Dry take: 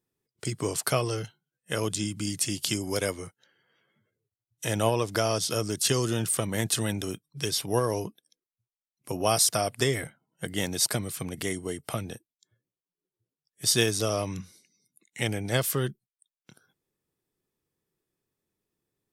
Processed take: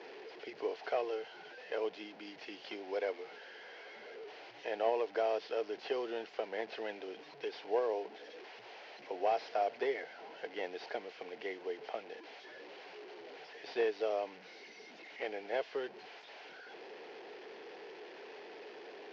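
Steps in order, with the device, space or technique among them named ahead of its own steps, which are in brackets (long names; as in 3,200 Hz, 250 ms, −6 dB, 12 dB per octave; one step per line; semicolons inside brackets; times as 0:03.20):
digital answering machine (band-pass filter 350–3,300 Hz; linear delta modulator 32 kbit/s, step −37.5 dBFS; loudspeaker in its box 390–4,400 Hz, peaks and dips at 440 Hz +7 dB, 750 Hz +6 dB, 1,200 Hz −10 dB, 3,700 Hz −7 dB)
level −6.5 dB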